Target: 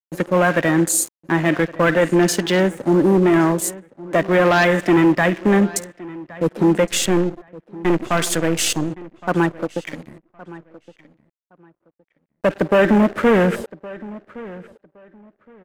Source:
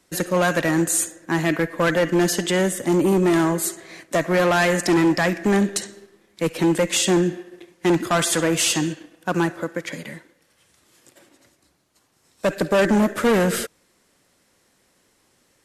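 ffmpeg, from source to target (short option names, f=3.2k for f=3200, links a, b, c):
-filter_complex "[0:a]asettb=1/sr,asplit=3[a][b][c];[a]atrim=end=6.844[d];[b]atrim=start=6.84:end=8.9,asetpts=PTS-STARTPTS,afade=t=in:d=0.004:c=qsin,afade=t=out:st=2.056:d=0.004:c=qsin,aeval=exprs='if(lt(val(0),0),0.447*val(0),val(0))':c=same[e];[c]atrim=start=8.896[f];[d][e]acrossfade=d=0.004:c1=hsin:c2=qsin[g];[g][f]acrossfade=d=0.004:c1=qsin:c2=hsin,afwtdn=0.0282,aeval=exprs='sgn(val(0))*max(abs(val(0))-0.00944,0)':c=same,asplit=2[h][i];[i]adelay=1116,lowpass=f=2.9k:p=1,volume=-19dB,asplit=2[j][k];[k]adelay=1116,lowpass=f=2.9k:p=1,volume=0.21[l];[h][j][l]amix=inputs=3:normalize=0,volume=4dB"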